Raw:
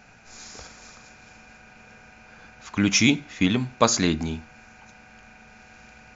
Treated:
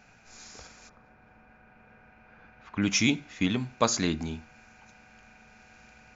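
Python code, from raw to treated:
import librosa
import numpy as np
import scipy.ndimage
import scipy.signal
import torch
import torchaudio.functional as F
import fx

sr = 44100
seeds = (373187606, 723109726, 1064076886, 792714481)

y = fx.lowpass(x, sr, hz=fx.line((0.88, 1300.0), (2.81, 2500.0)), slope=12, at=(0.88, 2.81), fade=0.02)
y = F.gain(torch.from_numpy(y), -5.5).numpy()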